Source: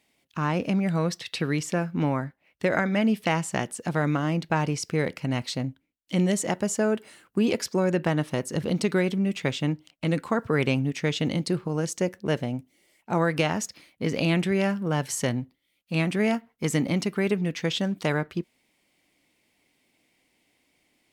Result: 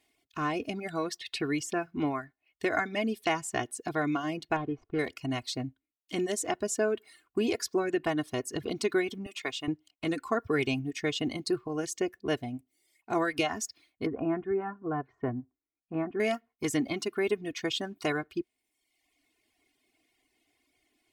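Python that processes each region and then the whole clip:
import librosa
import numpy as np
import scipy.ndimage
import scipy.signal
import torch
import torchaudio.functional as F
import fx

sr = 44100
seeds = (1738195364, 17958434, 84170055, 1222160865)

y = fx.chain(x, sr, fx.median_filter(points=25),
    fx.lowpass(hz=2300.0, slope=12), at=(4.56, 4.99))
y = fx.chain(y, sr, fx.highpass(hz=680.0, slope=6),
    fx.peak_eq(hz=1100.0, db=3.0, octaves=0.27), at=(9.26, 9.68))
y = fx.chain(y, sr, fx.lowpass(hz=1400.0, slope=24),
    fx.notch(hz=590.0, q=11.0), at=(14.06, 16.2))
y = fx.dereverb_blind(y, sr, rt60_s=1.0)
y = y + 0.75 * np.pad(y, (int(2.8 * sr / 1000.0), 0))[:len(y)]
y = F.gain(torch.from_numpy(y), -4.5).numpy()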